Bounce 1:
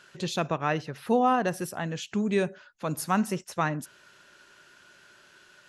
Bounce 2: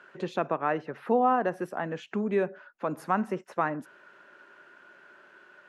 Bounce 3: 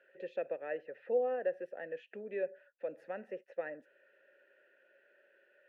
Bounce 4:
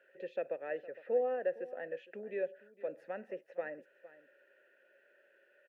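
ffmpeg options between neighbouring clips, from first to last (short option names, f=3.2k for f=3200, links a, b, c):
-filter_complex "[0:a]acrossover=split=210 2100:gain=0.1 1 0.0794[a][b][c];[a][b][c]amix=inputs=3:normalize=0,asplit=2[d][e];[e]acompressor=threshold=-34dB:ratio=6,volume=0dB[f];[d][f]amix=inputs=2:normalize=0,volume=-1.5dB"
-filter_complex "[0:a]asplit=3[a][b][c];[a]bandpass=f=530:t=q:w=8,volume=0dB[d];[b]bandpass=f=1.84k:t=q:w=8,volume=-6dB[e];[c]bandpass=f=2.48k:t=q:w=8,volume=-9dB[f];[d][e][f]amix=inputs=3:normalize=0"
-af "aecho=1:1:460:0.133"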